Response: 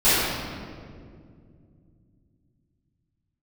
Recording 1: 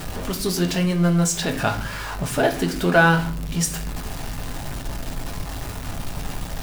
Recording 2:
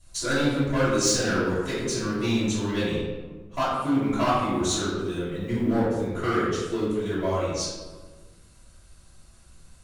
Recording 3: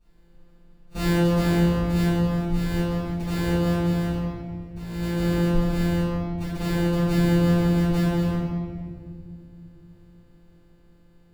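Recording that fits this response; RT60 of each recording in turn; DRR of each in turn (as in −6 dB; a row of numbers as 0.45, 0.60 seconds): 3; 0.45, 1.4, 2.2 seconds; 4.5, −12.5, −19.0 decibels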